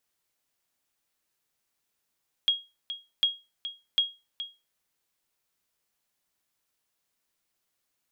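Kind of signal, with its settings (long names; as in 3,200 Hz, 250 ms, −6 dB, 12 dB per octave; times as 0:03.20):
ping with an echo 3,280 Hz, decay 0.26 s, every 0.75 s, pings 3, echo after 0.42 s, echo −12 dB −15.5 dBFS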